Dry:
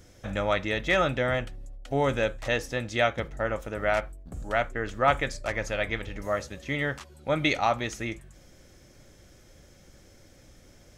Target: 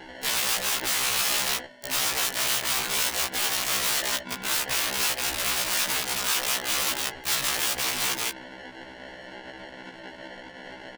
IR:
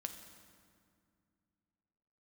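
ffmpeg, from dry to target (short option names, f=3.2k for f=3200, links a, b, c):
-filter_complex "[0:a]highpass=f=180:w=0.5412,highpass=f=180:w=1.3066,asplit=2[a][b];[b]adelay=169.1,volume=-10dB,highshelf=f=4k:g=-3.8[c];[a][c]amix=inputs=2:normalize=0,acrusher=samples=36:mix=1:aa=0.000001,asplit=2[d][e];[e]adelay=12,volume=-10dB[f];[d][f]amix=inputs=2:normalize=0,acompressor=threshold=-31dB:ratio=16,lowpass=2.3k,aeval=exprs='(mod(84.1*val(0)+1,2)-1)/84.1':c=same,tiltshelf=f=970:g=-10,alimiter=level_in=29.5dB:limit=-1dB:release=50:level=0:latency=1,afftfilt=real='re*1.73*eq(mod(b,3),0)':imag='im*1.73*eq(mod(b,3),0)':win_size=2048:overlap=0.75,volume=-8.5dB"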